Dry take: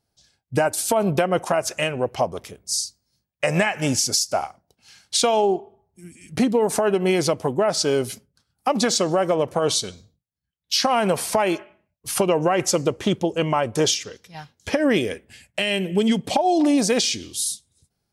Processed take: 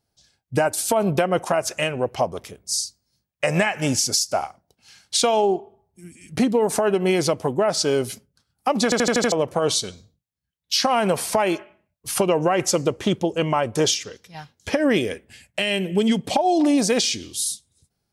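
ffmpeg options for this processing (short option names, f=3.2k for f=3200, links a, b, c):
-filter_complex "[0:a]asplit=7[a][b][c][d][e][f][g];[a]atrim=end=8.922[h];[b]atrim=start=8.838:end=8.922[i];[c]atrim=start=8.838:end=8.922[j];[d]atrim=start=8.838:end=8.922[k];[e]atrim=start=8.838:end=8.922[l];[f]atrim=start=8.838:end=8.922[m];[g]atrim=start=9.318[n];[h][i]acrossfade=d=0.004:c1=hsin:c2=hsin[o];[o][j]acrossfade=d=0.004:c1=hsin:c2=hsin[p];[p][k]acrossfade=d=0.004:c1=hsin:c2=hsin[q];[q][l]acrossfade=d=0.004:c1=hsin:c2=hsin[r];[r][m]acrossfade=d=0.004:c1=hsin:c2=hsin[s];[s][n]acrossfade=d=0.004:c1=hsin:c2=hsin"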